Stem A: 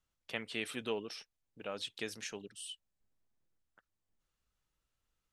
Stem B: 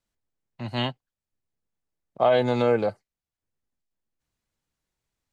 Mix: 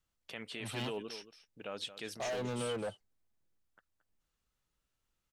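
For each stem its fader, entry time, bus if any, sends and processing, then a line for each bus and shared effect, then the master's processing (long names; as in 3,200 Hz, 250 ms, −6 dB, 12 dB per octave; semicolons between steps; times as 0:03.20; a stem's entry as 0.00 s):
0.0 dB, 0.00 s, no send, echo send −14.5 dB, no processing
−10.5 dB, 0.00 s, no send, no echo send, hard clipping −23.5 dBFS, distortion −6 dB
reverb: not used
echo: single-tap delay 224 ms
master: brickwall limiter −28.5 dBFS, peak gain reduction 7.5 dB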